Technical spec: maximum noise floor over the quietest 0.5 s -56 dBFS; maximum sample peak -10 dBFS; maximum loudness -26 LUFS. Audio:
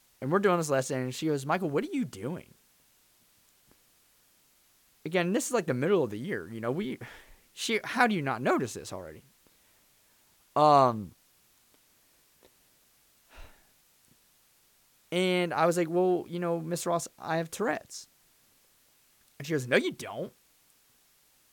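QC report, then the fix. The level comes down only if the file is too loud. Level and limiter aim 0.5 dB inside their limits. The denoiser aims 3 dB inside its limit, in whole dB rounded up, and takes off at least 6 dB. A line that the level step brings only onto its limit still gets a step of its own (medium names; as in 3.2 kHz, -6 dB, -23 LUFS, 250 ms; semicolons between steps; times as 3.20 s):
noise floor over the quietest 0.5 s -65 dBFS: pass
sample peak -9.0 dBFS: fail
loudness -29.0 LUFS: pass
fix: peak limiter -10.5 dBFS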